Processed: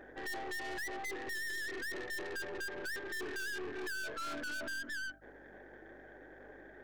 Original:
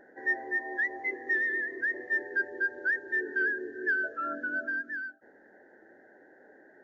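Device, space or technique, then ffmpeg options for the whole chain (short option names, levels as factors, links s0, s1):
valve amplifier with mains hum: -af "aeval=exprs='(tanh(178*val(0)+0.6)-tanh(0.6))/178':c=same,aeval=exprs='val(0)+0.000282*(sin(2*PI*50*n/s)+sin(2*PI*2*50*n/s)/2+sin(2*PI*3*50*n/s)/3+sin(2*PI*4*50*n/s)/4+sin(2*PI*5*50*n/s)/5)':c=same,volume=1.88"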